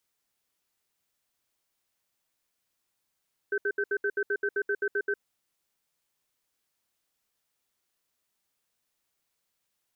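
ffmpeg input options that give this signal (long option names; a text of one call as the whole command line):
ffmpeg -f lavfi -i "aevalsrc='0.0422*(sin(2*PI*407*t)+sin(2*PI*1540*t))*clip(min(mod(t,0.13),0.06-mod(t,0.13))/0.005,0,1)':duration=1.63:sample_rate=44100" out.wav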